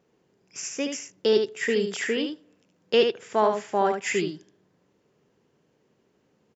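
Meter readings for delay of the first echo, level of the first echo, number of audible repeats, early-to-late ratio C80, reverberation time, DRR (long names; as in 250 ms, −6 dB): 74 ms, −6.0 dB, 1, no reverb audible, no reverb audible, no reverb audible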